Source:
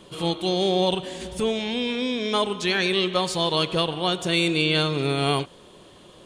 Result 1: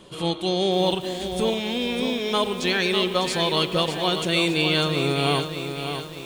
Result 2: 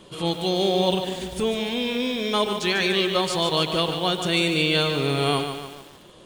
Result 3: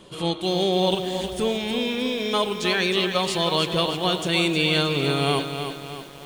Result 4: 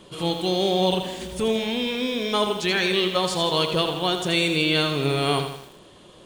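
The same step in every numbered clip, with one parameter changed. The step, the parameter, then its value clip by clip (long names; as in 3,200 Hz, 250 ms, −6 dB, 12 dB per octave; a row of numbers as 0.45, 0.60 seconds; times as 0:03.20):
feedback echo at a low word length, delay time: 600, 146, 312, 81 milliseconds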